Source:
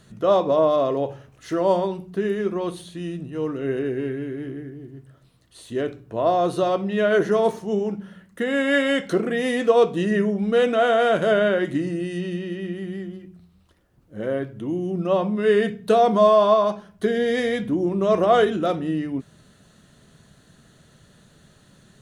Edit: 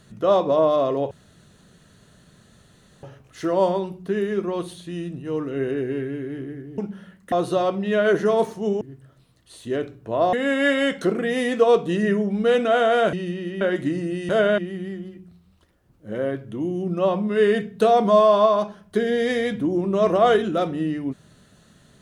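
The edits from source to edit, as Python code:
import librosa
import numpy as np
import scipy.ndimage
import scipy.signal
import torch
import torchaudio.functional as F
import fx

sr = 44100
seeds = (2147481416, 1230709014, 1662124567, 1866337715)

y = fx.edit(x, sr, fx.insert_room_tone(at_s=1.11, length_s=1.92),
    fx.swap(start_s=4.86, length_s=1.52, other_s=7.87, other_length_s=0.54),
    fx.swap(start_s=11.21, length_s=0.29, other_s=12.18, other_length_s=0.48), tone=tone)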